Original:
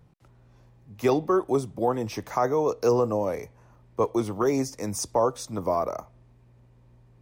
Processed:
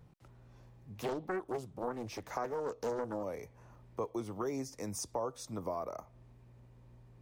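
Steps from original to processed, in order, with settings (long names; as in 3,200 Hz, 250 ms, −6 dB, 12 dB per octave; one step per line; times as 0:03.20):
downward compressor 2 to 1, threshold −41 dBFS, peak gain reduction 13 dB
0:00.95–0:03.23: highs frequency-modulated by the lows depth 0.85 ms
level −2 dB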